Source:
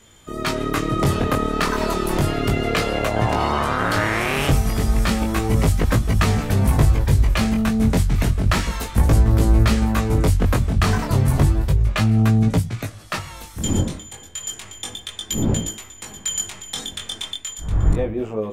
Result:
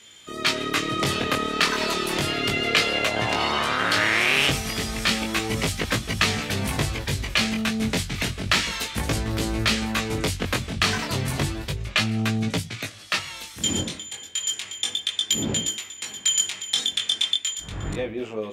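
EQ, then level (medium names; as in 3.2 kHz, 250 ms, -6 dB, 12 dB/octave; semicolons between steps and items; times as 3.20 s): frequency weighting D; -4.5 dB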